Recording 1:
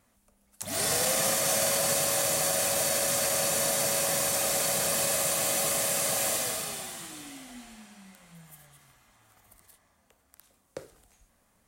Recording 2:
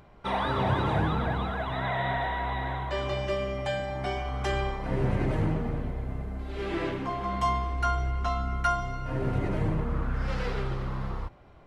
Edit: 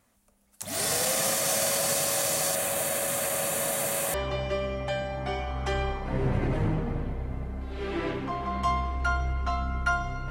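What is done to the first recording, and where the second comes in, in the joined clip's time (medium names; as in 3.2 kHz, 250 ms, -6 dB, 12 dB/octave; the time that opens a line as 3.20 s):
recording 1
2.55–4.14 s: peaking EQ 5.3 kHz -11 dB 0.65 oct
4.14 s: go over to recording 2 from 2.92 s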